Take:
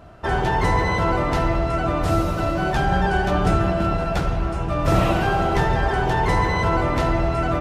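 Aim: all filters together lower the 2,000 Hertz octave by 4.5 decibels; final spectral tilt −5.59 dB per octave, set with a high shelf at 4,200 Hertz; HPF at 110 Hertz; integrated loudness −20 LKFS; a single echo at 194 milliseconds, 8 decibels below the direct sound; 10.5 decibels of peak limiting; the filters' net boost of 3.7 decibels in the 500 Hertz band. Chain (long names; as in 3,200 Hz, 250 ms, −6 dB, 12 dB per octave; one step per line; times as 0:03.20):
high-pass filter 110 Hz
parametric band 500 Hz +5.5 dB
parametric band 2,000 Hz −7.5 dB
high-shelf EQ 4,200 Hz +6 dB
brickwall limiter −16.5 dBFS
single-tap delay 194 ms −8 dB
level +4.5 dB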